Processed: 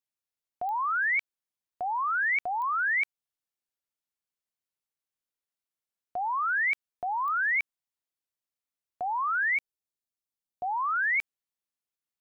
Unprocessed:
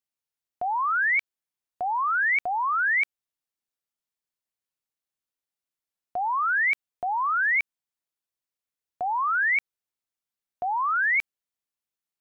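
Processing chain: 9.58–10.63 bell 1700 Hz -12.5 dB 1.3 oct; pops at 0.69/2.62/7.28, -24 dBFS; gain -3.5 dB

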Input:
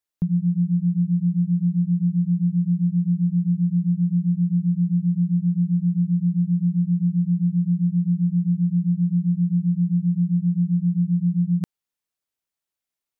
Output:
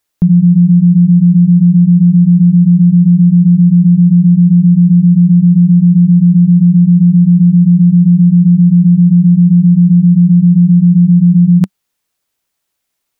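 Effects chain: dynamic EQ 190 Hz, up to +6 dB, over -33 dBFS, Q 3; maximiser +16.5 dB; gain -1 dB

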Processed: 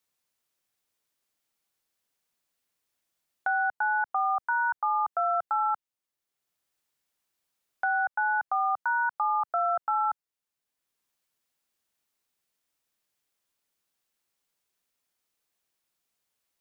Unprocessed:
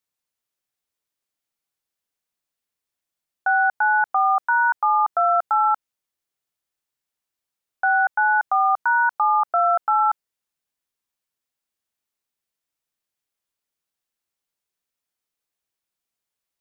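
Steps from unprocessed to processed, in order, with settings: three-band squash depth 40%; gain -8 dB

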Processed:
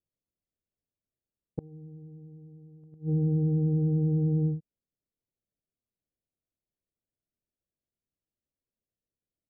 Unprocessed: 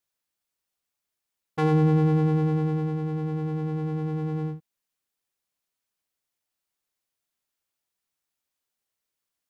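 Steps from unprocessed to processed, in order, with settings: steep low-pass 670 Hz 48 dB/oct; low shelf 360 Hz +12 dB; flipped gate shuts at -12 dBFS, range -29 dB; gain -6 dB

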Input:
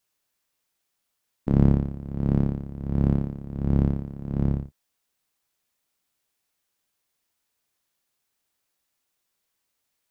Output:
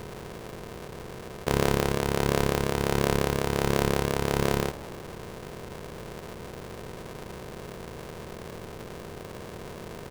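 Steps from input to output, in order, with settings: per-bin compression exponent 0.2; frequency-shifting echo 0.133 s, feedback 65%, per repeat +140 Hz, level -21 dB; polarity switched at an audio rate 280 Hz; gain -8.5 dB

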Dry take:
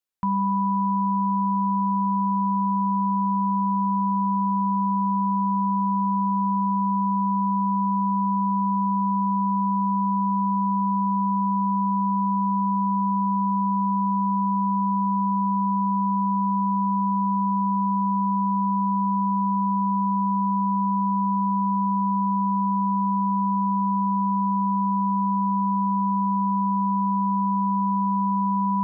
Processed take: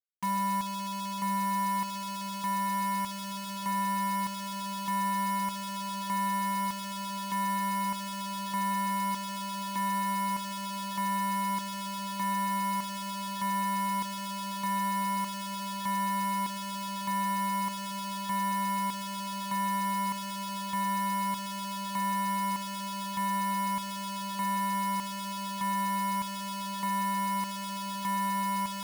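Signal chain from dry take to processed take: spectral contrast raised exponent 2.3; HPF 250 Hz 6 dB/oct; companded quantiser 6-bit; soft clip -23.5 dBFS, distortion -16 dB; chopper 0.82 Hz, depth 60%, duty 50%; requantised 6-bit, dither none; on a send: diffused feedback echo 1.264 s, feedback 74%, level -12 dB; on the sum: gain -2 dB

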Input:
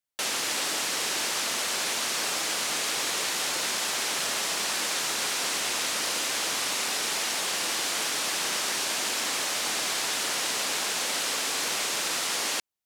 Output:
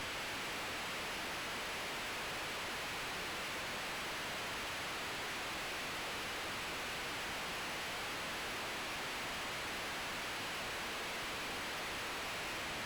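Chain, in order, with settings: delta modulation 16 kbps, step -26.5 dBFS; air absorption 58 m; tube stage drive 46 dB, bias 0.65; gain +5 dB

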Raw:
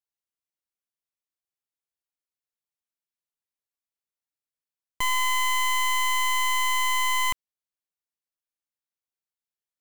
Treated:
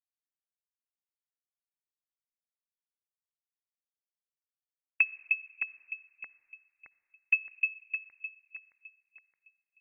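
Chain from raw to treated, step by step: full-wave rectifier; low shelf 100 Hz +9 dB; added harmonics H 4 -20 dB, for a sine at -21.5 dBFS; expander -56 dBFS; split-band echo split 450 Hz, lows 0.305 s, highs 0.619 s, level -3.5 dB; reverb RT60 2.0 s, pre-delay 47 ms, DRR 20 dB; inverted band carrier 2600 Hz; gain +5 dB

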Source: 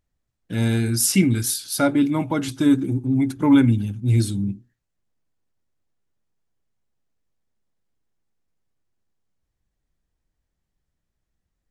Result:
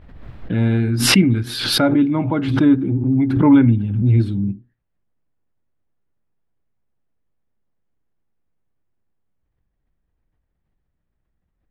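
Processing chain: air absorption 440 m; backwards sustainer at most 49 dB/s; gain +3.5 dB

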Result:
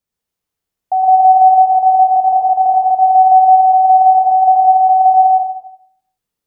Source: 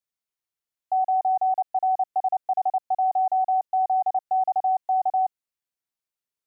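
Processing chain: low shelf 470 Hz +12 dB; plate-style reverb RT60 0.71 s, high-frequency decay 0.8×, pre-delay 90 ms, DRR -1.5 dB; gain +4.5 dB

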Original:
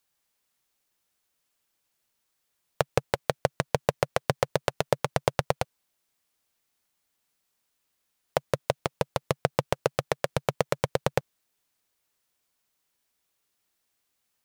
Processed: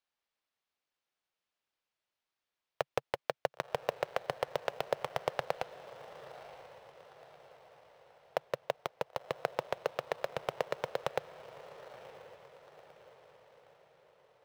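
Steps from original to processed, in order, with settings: three-band isolator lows -14 dB, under 390 Hz, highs -19 dB, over 5000 Hz; diffused feedback echo 0.994 s, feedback 49%, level -14 dB; in parallel at -12 dB: sample-and-hold 19×; on the sum: gain -7.5 dB

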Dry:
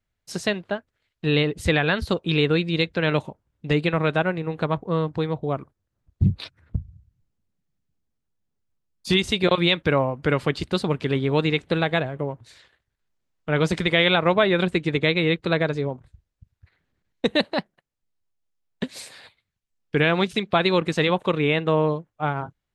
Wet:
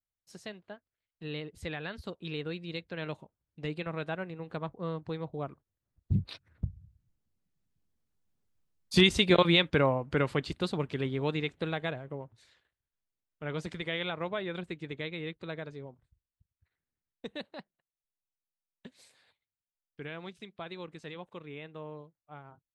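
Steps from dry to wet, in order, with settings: Doppler pass-by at 8.47, 6 m/s, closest 5.5 m

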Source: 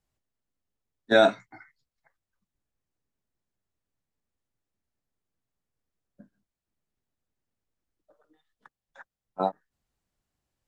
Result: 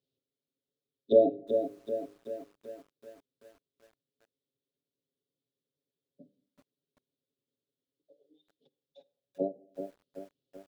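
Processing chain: air absorption 340 m; comb 7.3 ms, depth 85%; treble ducked by the level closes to 570 Hz, closed at -26 dBFS; elliptic band-stop 500–3500 Hz, stop band 50 dB; de-hum 100.1 Hz, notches 5; wow and flutter 29 cents; weighting filter A; on a send at -21 dB: reverb RT60 0.60 s, pre-delay 48 ms; on the sum: lo-fi delay 0.382 s, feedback 55%, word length 11-bit, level -7.5 dB; gain +7.5 dB

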